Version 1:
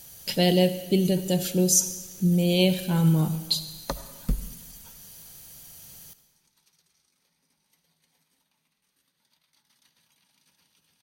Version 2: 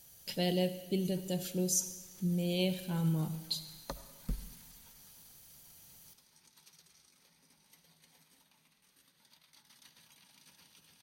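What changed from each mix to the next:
speech -11.0 dB; background +5.0 dB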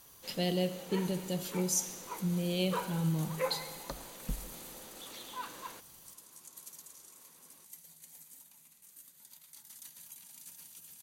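first sound: unmuted; second sound: remove polynomial smoothing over 15 samples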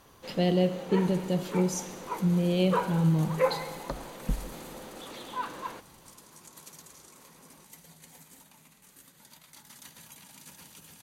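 speech -6.5 dB; first sound -4.5 dB; master: remove pre-emphasis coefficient 0.8

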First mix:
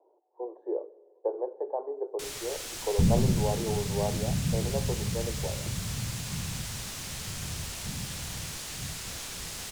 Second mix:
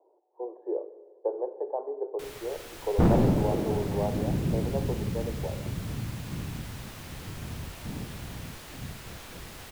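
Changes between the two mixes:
speech: send +7.0 dB; second sound: remove inverse Chebyshev low-pass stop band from 730 Hz, stop band 60 dB; master: add bell 7000 Hz -13 dB 2.1 oct

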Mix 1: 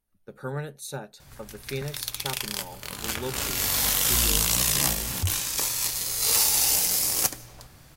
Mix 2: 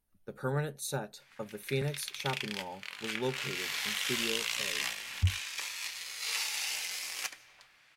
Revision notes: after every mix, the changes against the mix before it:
background: add band-pass 2300 Hz, Q 1.8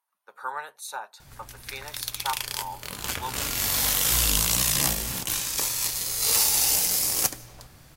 speech: add resonant high-pass 980 Hz, resonance Q 4.9; background: remove band-pass 2300 Hz, Q 1.8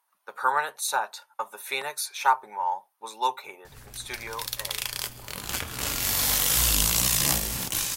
speech +9.0 dB; background: entry +2.45 s

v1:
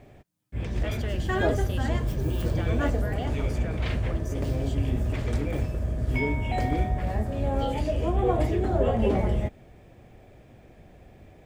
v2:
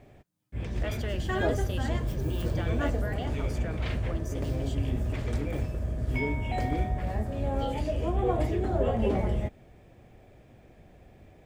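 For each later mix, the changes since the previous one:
background -3.0 dB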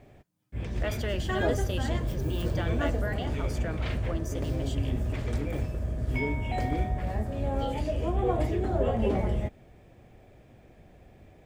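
speech +3.5 dB

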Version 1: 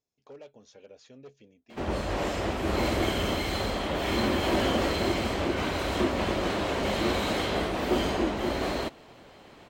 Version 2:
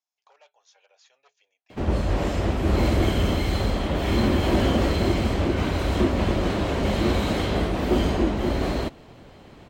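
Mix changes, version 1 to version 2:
speech: add elliptic band-pass 790–7300 Hz, stop band 50 dB; master: add low shelf 250 Hz +12 dB

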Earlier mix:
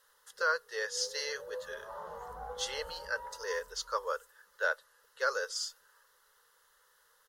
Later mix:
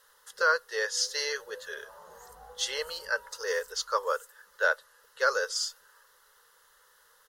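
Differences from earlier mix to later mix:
speech +5.5 dB; first sound -7.5 dB; second sound +11.5 dB

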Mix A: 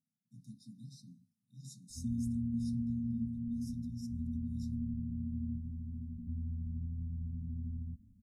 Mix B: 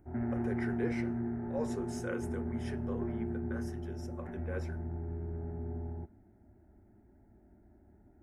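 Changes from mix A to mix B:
background: entry -1.90 s; master: remove brick-wall FIR band-stop 270–3600 Hz

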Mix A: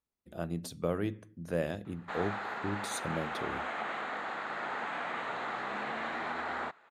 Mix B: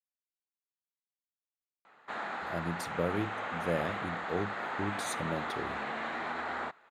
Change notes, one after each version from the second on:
speech: entry +2.15 s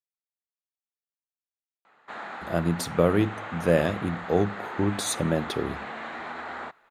speech +11.0 dB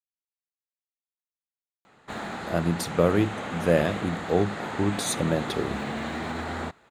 background: remove band-pass 1300 Hz, Q 0.8

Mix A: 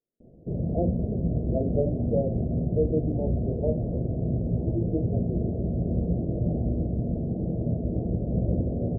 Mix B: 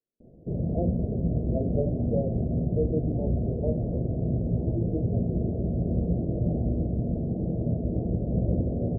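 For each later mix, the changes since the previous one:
speech -3.0 dB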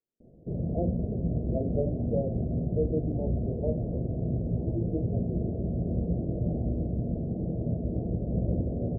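reverb: off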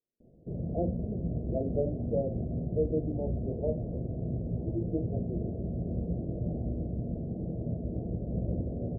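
background -4.0 dB

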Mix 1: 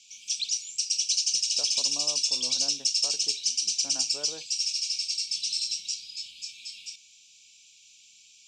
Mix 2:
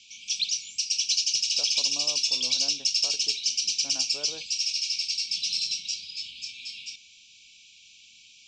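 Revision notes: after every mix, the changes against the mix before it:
background +8.5 dB; master: add air absorption 150 m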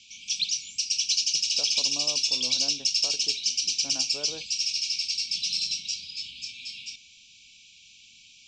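master: add low shelf 440 Hz +5.5 dB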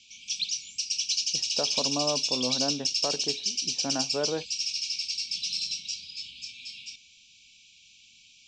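speech +11.5 dB; background -3.0 dB

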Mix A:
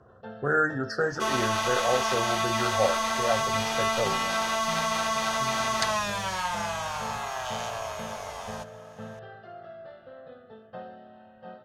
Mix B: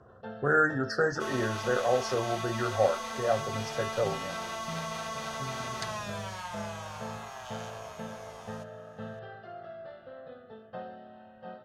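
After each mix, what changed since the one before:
second sound -10.0 dB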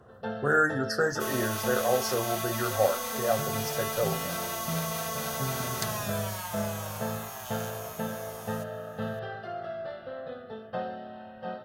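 first sound +7.0 dB; master: remove air absorption 97 m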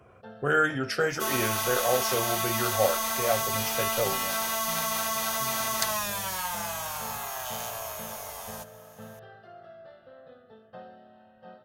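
speech: remove brick-wall FIR band-stop 1900–4000 Hz; first sound -11.5 dB; second sound +5.5 dB

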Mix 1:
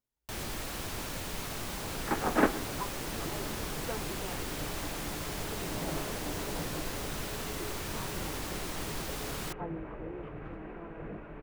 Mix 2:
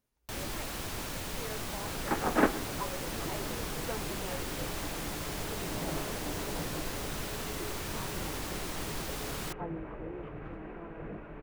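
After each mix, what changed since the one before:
speech +11.0 dB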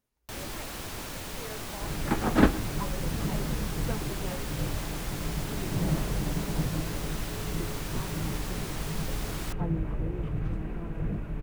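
second sound: remove three-band isolator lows -16 dB, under 300 Hz, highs -22 dB, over 2900 Hz

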